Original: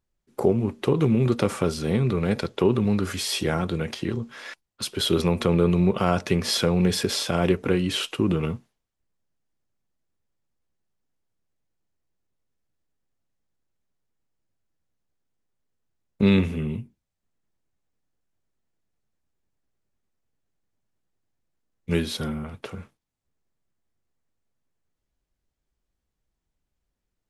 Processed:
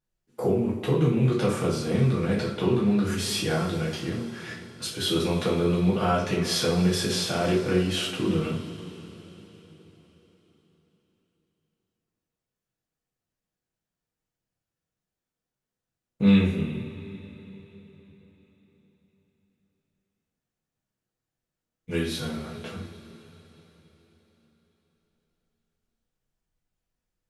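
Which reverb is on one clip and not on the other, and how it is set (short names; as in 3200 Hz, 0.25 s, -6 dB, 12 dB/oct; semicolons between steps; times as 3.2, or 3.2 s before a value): two-slope reverb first 0.42 s, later 4.3 s, from -19 dB, DRR -6.5 dB; gain -8.5 dB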